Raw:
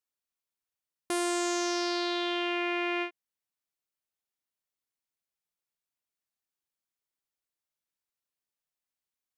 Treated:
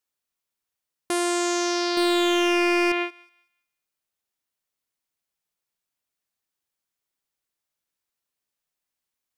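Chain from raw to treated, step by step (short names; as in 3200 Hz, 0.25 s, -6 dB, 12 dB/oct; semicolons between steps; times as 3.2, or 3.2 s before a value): 1.97–2.92 sample leveller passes 2; thinning echo 0.187 s, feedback 26%, high-pass 930 Hz, level -23 dB; gain +5.5 dB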